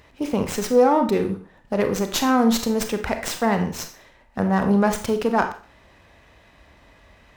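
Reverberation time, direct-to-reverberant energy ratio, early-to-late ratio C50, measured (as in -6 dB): 0.40 s, 6.5 dB, 9.5 dB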